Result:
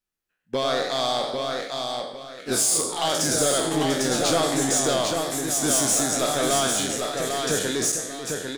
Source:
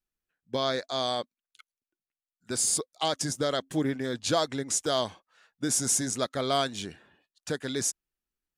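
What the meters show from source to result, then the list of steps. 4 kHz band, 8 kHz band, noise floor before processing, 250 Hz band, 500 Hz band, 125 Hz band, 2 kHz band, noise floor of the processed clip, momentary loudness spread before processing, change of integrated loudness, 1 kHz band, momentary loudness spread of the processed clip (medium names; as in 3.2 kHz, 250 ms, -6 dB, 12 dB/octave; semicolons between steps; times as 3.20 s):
+6.5 dB, +7.5 dB, under -85 dBFS, +6.0 dB, +7.0 dB, +4.5 dB, +8.5 dB, -78 dBFS, 10 LU, +6.0 dB, +7.0 dB, 9 LU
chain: spectral sustain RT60 0.55 s; gate -55 dBFS, range -7 dB; bass shelf 130 Hz -7 dB; in parallel at -2 dB: compression, threshold -34 dBFS, peak gain reduction 14.5 dB; on the sum: saturation -20.5 dBFS, distortion -12 dB; on a send: feedback delay 799 ms, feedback 27%, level -4.5 dB; on the sum: ever faster or slower copies 119 ms, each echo +1 st, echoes 3, each echo -6 dB; trim +3.5 dB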